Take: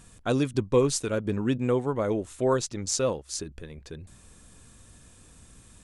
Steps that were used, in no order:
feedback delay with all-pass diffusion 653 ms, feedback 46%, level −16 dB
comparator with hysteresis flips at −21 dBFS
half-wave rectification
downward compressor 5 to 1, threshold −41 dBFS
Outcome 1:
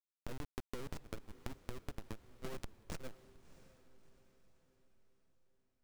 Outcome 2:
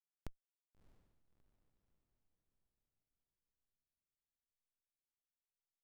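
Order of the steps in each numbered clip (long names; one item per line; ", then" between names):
comparator with hysteresis, then half-wave rectification, then downward compressor, then feedback delay with all-pass diffusion
half-wave rectification, then comparator with hysteresis, then downward compressor, then feedback delay with all-pass diffusion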